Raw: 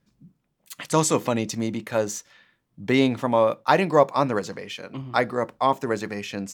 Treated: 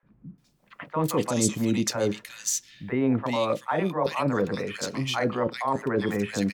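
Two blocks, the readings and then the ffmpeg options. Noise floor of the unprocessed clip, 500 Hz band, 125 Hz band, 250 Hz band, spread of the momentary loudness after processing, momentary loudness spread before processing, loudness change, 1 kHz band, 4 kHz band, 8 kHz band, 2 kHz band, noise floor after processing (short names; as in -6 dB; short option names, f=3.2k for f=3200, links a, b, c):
-73 dBFS, -4.5 dB, 0.0 dB, -0.5 dB, 6 LU, 15 LU, -3.5 dB, -6.0 dB, -0.5 dB, +2.0 dB, -3.5 dB, -64 dBFS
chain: -filter_complex "[0:a]areverse,acompressor=threshold=-26dB:ratio=12,areverse,acrossover=split=630|2100[a][b][c];[a]adelay=30[d];[c]adelay=380[e];[d][b][e]amix=inputs=3:normalize=0,volume=7dB"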